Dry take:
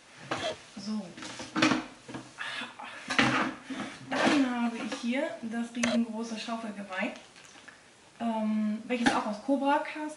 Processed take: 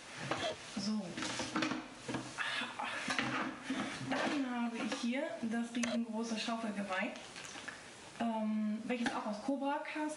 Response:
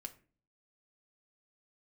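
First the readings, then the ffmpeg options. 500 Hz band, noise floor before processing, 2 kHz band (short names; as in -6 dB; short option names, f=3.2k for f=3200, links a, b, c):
-7.0 dB, -56 dBFS, -7.0 dB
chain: -af "acompressor=threshold=-39dB:ratio=5,volume=4dB"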